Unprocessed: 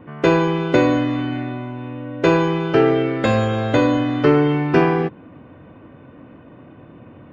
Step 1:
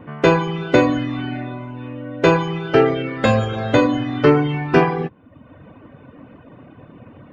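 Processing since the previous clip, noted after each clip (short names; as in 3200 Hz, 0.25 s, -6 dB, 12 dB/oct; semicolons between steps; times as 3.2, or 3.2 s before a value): reverb removal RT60 0.84 s; bell 340 Hz -4.5 dB 0.25 oct; gain +3 dB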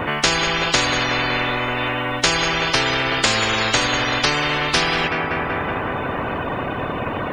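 tape echo 0.188 s, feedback 75%, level -16.5 dB, low-pass 3600 Hz; spectral compressor 10:1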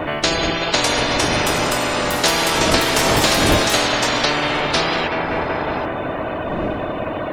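wind noise 360 Hz -27 dBFS; thirty-one-band EQ 315 Hz +6 dB, 630 Hz +10 dB, 4000 Hz +5 dB; echoes that change speed 0.674 s, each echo +6 st, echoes 3; gain -3 dB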